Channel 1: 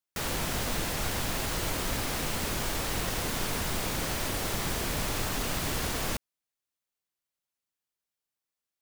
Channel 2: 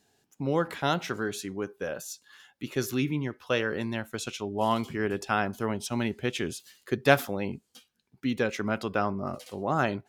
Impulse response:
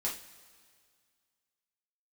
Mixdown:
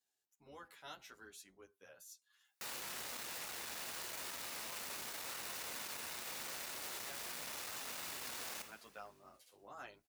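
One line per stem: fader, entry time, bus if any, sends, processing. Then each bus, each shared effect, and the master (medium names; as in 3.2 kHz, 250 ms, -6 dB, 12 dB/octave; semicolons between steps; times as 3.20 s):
+1.0 dB, 2.45 s, send -10 dB, saturation -34.5 dBFS, distortion -9 dB; band-stop 3.2 kHz, Q 25
-18.0 dB, 0.00 s, no send, octave divider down 2 oct, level +1 dB; treble shelf 6.3 kHz +9 dB; endless flanger 9.8 ms -2.4 Hz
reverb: on, pre-delay 3 ms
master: high-pass 1 kHz 6 dB/octave; peak limiter -36.5 dBFS, peak gain reduction 11.5 dB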